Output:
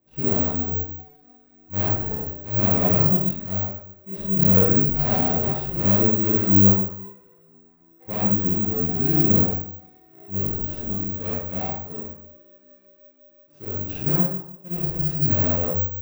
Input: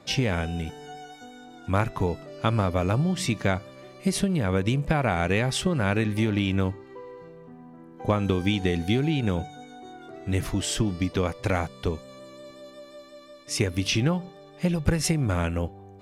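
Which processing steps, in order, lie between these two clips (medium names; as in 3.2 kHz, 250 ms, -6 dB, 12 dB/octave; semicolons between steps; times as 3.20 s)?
median filter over 41 samples; 11.38–13.75 s: high-pass 100 Hz 24 dB/octave; gate -41 dBFS, range -14 dB; slow attack 144 ms; chorus voices 6, 0.47 Hz, delay 24 ms, depth 3.6 ms; reverberation RT60 0.75 s, pre-delay 32 ms, DRR -5.5 dB; careless resampling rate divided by 2×, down none, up zero stuff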